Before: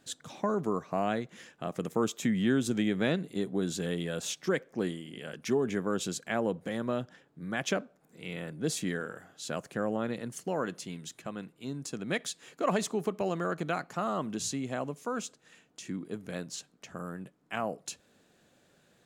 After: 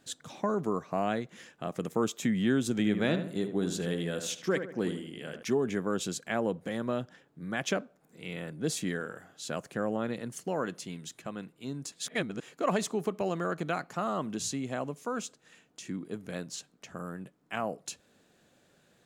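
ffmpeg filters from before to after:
-filter_complex "[0:a]asettb=1/sr,asplit=3[s0][s1][s2];[s0]atrim=end=2.714[s3];[s1]atrim=start=2.71:end=5.43,asetpts=PTS-STARTPTS,afade=t=in:d=0.004:c=qsin,afade=t=out:st=2.716:d=0.004:c=qsin,asplit=2[s4][s5];[s5]adelay=76,lowpass=f=2100:p=1,volume=0.398,asplit=2[s6][s7];[s7]adelay=76,lowpass=f=2100:p=1,volume=0.43,asplit=2[s8][s9];[s9]adelay=76,lowpass=f=2100:p=1,volume=0.43,asplit=2[s10][s11];[s11]adelay=76,lowpass=f=2100:p=1,volume=0.43,asplit=2[s12][s13];[s13]adelay=76,lowpass=f=2100:p=1,volume=0.43[s14];[s4][s6][s8][s10][s12][s14]amix=inputs=6:normalize=0,atrim=end_sample=119952[s15];[s2]atrim=start=5.426[s16];[s3][s15]acrossfade=d=0.004:c1=hsin:c2=qsin[s17];[s17][s16]acrossfade=d=0.004:c1=qsin:c2=hsin,asplit=3[s18][s19][s20];[s18]atrim=end=11.922[s21];[s19]atrim=start=11.918:end=12.412,asetpts=PTS-STARTPTS,areverse[s22];[s20]atrim=start=12.408[s23];[s21][s22]acrossfade=d=0.004:c1=hsin:c2=hsin[s24];[s24][s23]acrossfade=d=0.004:c1=hsin:c2=hsin"

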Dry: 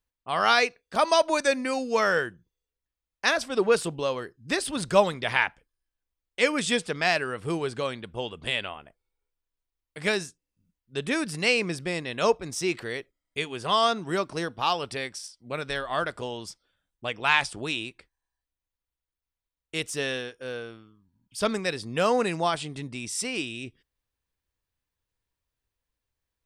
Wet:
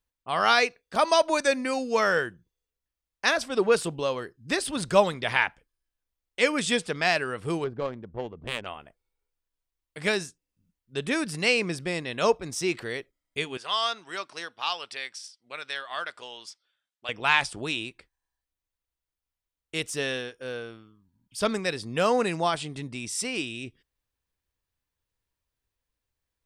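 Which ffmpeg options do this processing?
-filter_complex "[0:a]asettb=1/sr,asplit=3[s0][s1][s2];[s0]atrim=end=7.644[s3];[s1]atrim=start=7.64:end=8.66,asetpts=PTS-STARTPTS,afade=t=in:d=0.004:c=qsin,afade=t=out:st=1.016:d=0.004:c=qsin,adynamicsmooth=sensitivity=1:basefreq=620[s4];[s2]atrim=start=8.656[s5];[s3][s4]acrossfade=d=0.004:c1=hsin:c2=qsin[s6];[s6][s5]acrossfade=d=0.004:c1=qsin:c2=hsin,asettb=1/sr,asplit=3[s7][s8][s9];[s7]atrim=end=13.574[s10];[s8]atrim=start=13.57:end=17.09,asetpts=PTS-STARTPTS,afade=t=in:d=0.004:c=qsin,afade=t=out:st=3.516:d=0.004:c=qsin,bandpass=f=3200:t=q:w=0.57[s11];[s9]atrim=start=17.086[s12];[s10][s11]acrossfade=d=0.004:c1=hsin:c2=qsin[s13];[s13][s12]acrossfade=d=0.004:c1=qsin:c2=hsin"

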